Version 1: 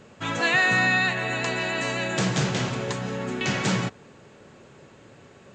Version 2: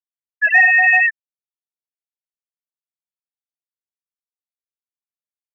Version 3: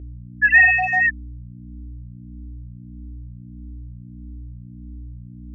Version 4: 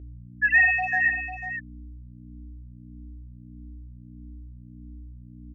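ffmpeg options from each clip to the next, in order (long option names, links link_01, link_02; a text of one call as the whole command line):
ffmpeg -i in.wav -af "highpass=frequency=510:width=0.5412,highpass=frequency=510:width=1.3066,afftfilt=real='re*gte(hypot(re,im),0.355)':imag='im*gte(hypot(re,im),0.355)':win_size=1024:overlap=0.75,acontrast=27,volume=6.5dB" out.wav
ffmpeg -i in.wav -filter_complex "[0:a]aeval=exprs='val(0)+0.0251*(sin(2*PI*60*n/s)+sin(2*PI*2*60*n/s)/2+sin(2*PI*3*60*n/s)/3+sin(2*PI*4*60*n/s)/4+sin(2*PI*5*60*n/s)/5)':channel_layout=same,asplit=2[link_01][link_02];[link_02]afreqshift=1.6[link_03];[link_01][link_03]amix=inputs=2:normalize=1" out.wav
ffmpeg -i in.wav -af "aecho=1:1:497:0.335,volume=-6dB" out.wav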